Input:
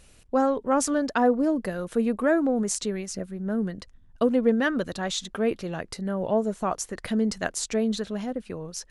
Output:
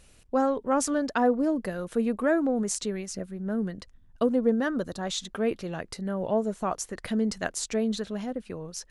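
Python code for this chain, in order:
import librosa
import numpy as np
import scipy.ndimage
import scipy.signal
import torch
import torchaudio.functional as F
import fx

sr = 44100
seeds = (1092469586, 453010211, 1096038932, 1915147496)

y = fx.peak_eq(x, sr, hz=2500.0, db=-9.0, octaves=1.1, at=(4.26, 5.07))
y = y * librosa.db_to_amplitude(-2.0)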